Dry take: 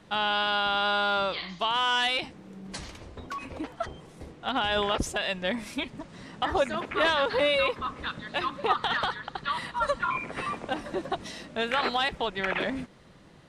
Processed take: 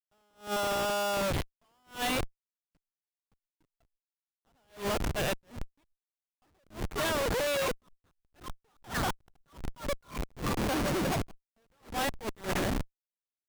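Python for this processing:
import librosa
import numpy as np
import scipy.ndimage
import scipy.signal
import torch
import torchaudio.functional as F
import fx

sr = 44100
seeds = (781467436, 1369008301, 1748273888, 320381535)

y = fx.resample_bad(x, sr, factor=6, down='none', up='zero_stuff', at=(10.57, 11.22))
y = fx.echo_feedback(y, sr, ms=162, feedback_pct=18, wet_db=-21.5)
y = fx.schmitt(y, sr, flips_db=-28.5)
y = fx.attack_slew(y, sr, db_per_s=210.0)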